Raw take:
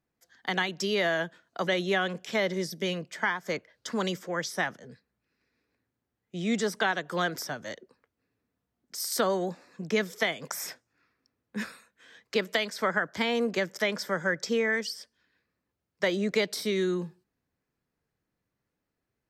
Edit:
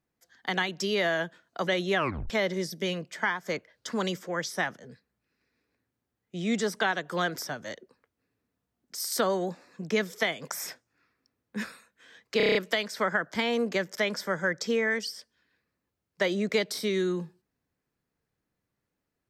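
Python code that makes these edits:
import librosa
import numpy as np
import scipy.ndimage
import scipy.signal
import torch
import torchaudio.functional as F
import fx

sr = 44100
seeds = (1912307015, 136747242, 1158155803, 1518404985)

y = fx.edit(x, sr, fx.tape_stop(start_s=1.97, length_s=0.33),
    fx.stutter(start_s=12.37, slice_s=0.03, count=7), tone=tone)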